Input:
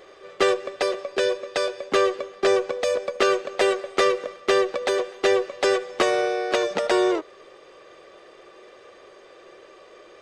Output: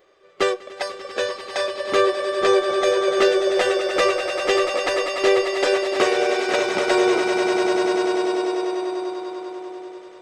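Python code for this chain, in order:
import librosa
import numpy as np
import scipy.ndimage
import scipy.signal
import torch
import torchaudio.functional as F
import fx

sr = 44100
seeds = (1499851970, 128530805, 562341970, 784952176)

y = fx.echo_swell(x, sr, ms=98, loudest=8, wet_db=-8.5)
y = fx.noise_reduce_blind(y, sr, reduce_db=10)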